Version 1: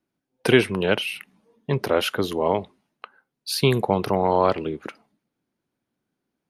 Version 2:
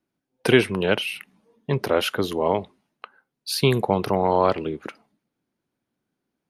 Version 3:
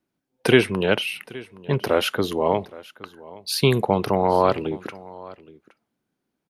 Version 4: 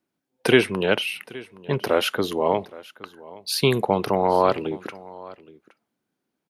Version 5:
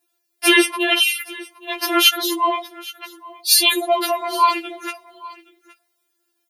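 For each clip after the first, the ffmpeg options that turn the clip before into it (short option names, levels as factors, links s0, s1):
-af anull
-af "aecho=1:1:819:0.0944,volume=1.12"
-af "lowshelf=f=100:g=-10.5"
-af "crystalizer=i=7.5:c=0,bass=f=250:g=-5,treble=f=4000:g=-5,afftfilt=real='re*4*eq(mod(b,16),0)':imag='im*4*eq(mod(b,16),0)':win_size=2048:overlap=0.75,volume=1.5"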